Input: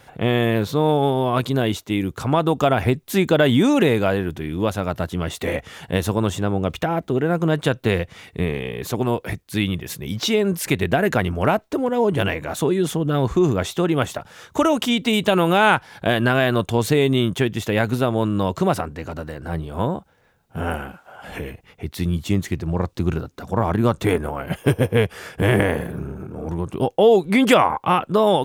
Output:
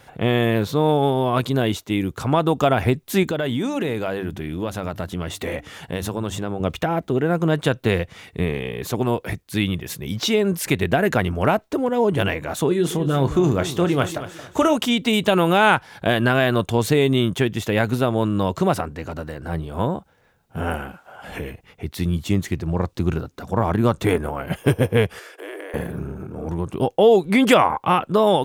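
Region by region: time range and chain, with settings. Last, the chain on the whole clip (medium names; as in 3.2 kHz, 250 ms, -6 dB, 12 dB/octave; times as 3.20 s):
3.23–6.60 s: de-hum 98.75 Hz, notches 3 + compression 2.5:1, threshold -23 dBFS
12.68–14.76 s: doubling 29 ms -11 dB + feedback delay 224 ms, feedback 31%, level -13 dB
25.19–25.74 s: steep high-pass 300 Hz 96 dB/octave + peaking EQ 830 Hz -6 dB 0.27 oct + compression 2.5:1, threshold -39 dBFS
whole clip: none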